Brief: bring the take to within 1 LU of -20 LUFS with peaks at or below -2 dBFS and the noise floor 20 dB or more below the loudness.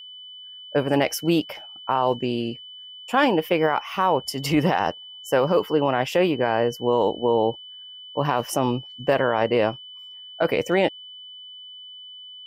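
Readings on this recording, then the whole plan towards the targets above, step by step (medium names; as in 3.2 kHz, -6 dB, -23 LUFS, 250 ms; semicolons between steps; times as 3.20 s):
steady tone 3 kHz; tone level -39 dBFS; loudness -23.0 LUFS; peak level -9.0 dBFS; loudness target -20.0 LUFS
-> band-stop 3 kHz, Q 30; trim +3 dB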